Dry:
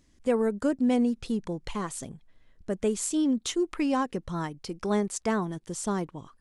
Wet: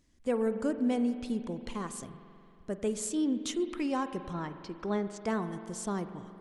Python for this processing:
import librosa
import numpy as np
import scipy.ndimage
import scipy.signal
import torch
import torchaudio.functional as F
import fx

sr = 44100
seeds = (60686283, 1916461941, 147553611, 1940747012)

y = fx.lowpass(x, sr, hz=4100.0, slope=12, at=(4.33, 5.25))
y = fx.rev_spring(y, sr, rt60_s=2.6, pass_ms=(45,), chirp_ms=35, drr_db=10.0)
y = y * 10.0 ** (-5.0 / 20.0)